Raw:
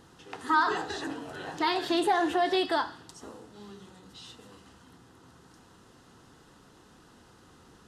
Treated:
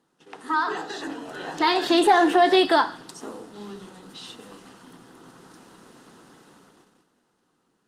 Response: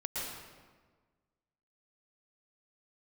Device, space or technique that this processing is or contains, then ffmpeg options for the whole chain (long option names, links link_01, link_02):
video call: -af "highpass=frequency=160:width=0.5412,highpass=frequency=160:width=1.3066,dynaudnorm=framelen=240:gausssize=13:maxgain=9.5dB,agate=range=-12dB:threshold=-52dB:ratio=16:detection=peak" -ar 48000 -c:a libopus -b:a 32k